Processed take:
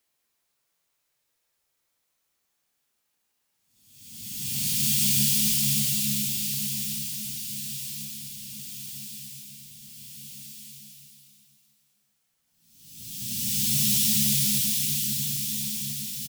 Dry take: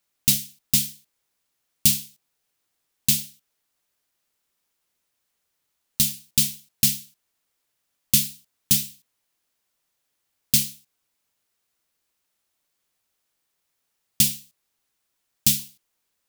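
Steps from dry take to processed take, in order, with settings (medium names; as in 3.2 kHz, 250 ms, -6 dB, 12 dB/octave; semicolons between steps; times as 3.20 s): spectral blur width 82 ms; reverse bouncing-ball echo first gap 100 ms, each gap 1.2×, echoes 5; Paulstretch 7×, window 0.25 s, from 13.50 s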